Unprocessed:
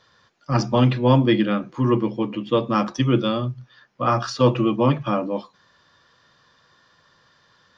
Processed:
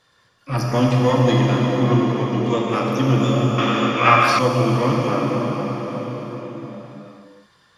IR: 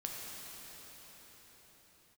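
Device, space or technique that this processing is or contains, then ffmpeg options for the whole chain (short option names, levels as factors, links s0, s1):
shimmer-style reverb: -filter_complex "[0:a]asplit=2[s0][s1];[s1]asetrate=88200,aresample=44100,atempo=0.5,volume=0.316[s2];[s0][s2]amix=inputs=2:normalize=0[s3];[1:a]atrim=start_sample=2205[s4];[s3][s4]afir=irnorm=-1:irlink=0,asettb=1/sr,asplit=3[s5][s6][s7];[s5]atrim=end=3.584[s8];[s6]atrim=start=3.58:end=4.39,asetpts=PTS-STARTPTS,afade=t=in:d=0.004:c=qsin,afade=t=out:st=0.806:d=0.004:c=qsin,equalizer=f=2000:t=o:w=2.6:g=13.5[s9];[s7]atrim=start=4.386[s10];[s8][s9]acrossfade=d=0.004:c1=hsin:c2=qsin[s11];[s11][s10]acrossfade=d=0.004:c1=qsin:c2=hsin"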